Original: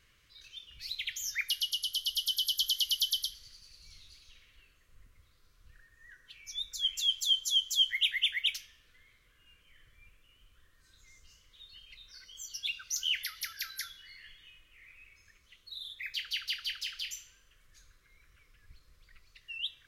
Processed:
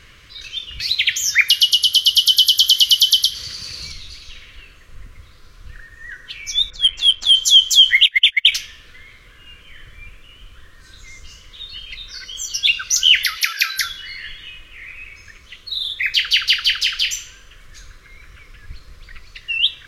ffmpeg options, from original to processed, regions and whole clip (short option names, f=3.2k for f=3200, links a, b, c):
-filter_complex "[0:a]asettb=1/sr,asplit=3[a][b][c];[a]atrim=end=0.804[d];[b]atrim=start=0.8:end=3.92,asetpts=PTS-STARTPTS,afade=t=in:d=0.004:c=qsin,afade=t=out:st=3.116:d=0.004:c=qsin,acompressor=mode=upward:threshold=-39dB:ratio=2.5:attack=3.2:release=140:knee=2.83:detection=peak,highpass=72[e];[c]atrim=start=3.916[f];[d][e]acrossfade=d=0.004:c1=hsin:c2=qsin[g];[g][f]acrossfade=d=0.004:c1=qsin:c2=hsin,asettb=1/sr,asplit=3[h][i][j];[h]atrim=end=6.704[k];[i]atrim=start=6.7:end=7.35,asetpts=PTS-STARTPTS,afade=t=in:d=0.004:c=qsin,afade=t=out:st=0.646:d=0.004:c=qsin,asoftclip=type=hard:threshold=-24dB,adynamicsmooth=sensitivity=2.5:basefreq=1.7k[l];[j]atrim=start=7.346[m];[k][l]acrossfade=d=0.004:c1=hsin:c2=qsin[n];[n][m]acrossfade=d=0.004:c1=qsin:c2=hsin,asettb=1/sr,asplit=3[o][p][q];[o]atrim=end=8.064[r];[p]atrim=start=8.06:end=8.52,asetpts=PTS-STARTPTS,afade=t=in:d=0.004:c=qsin,afade=t=out:st=0.456:d=0.004:c=qsin,agate=range=-27dB:threshold=-33dB:ratio=16:release=100:detection=peak,acompressor=mode=upward:threshold=-45dB:ratio=2.5:attack=3.2:release=140:knee=2.83:detection=peak[s];[q]atrim=start=8.516[t];[r][s]acrossfade=d=0.004:c1=hsin:c2=qsin[u];[u][t]acrossfade=d=0.004:c1=qsin:c2=hsin,asettb=1/sr,asplit=3[v][w][x];[v]atrim=end=13.374[y];[w]atrim=start=13.37:end=13.77,asetpts=PTS-STARTPTS,afade=t=in:d=0.004:c=qsin,afade=t=out:st=0.396:d=0.004:c=qsin,highpass=f=410:w=0.5412,highpass=f=410:w=1.3066,equalizer=f=2.5k:w=7.4:g=12[z];[x]atrim=start=13.766[aa];[y][z]acrossfade=d=0.004:c1=hsin:c2=qsin[ab];[ab][aa]acrossfade=d=0.004:c1=qsin:c2=hsin,highshelf=f=8.5k:g=-11.5,alimiter=level_in=22dB:limit=-1dB:release=50:level=0:latency=1,volume=-1dB"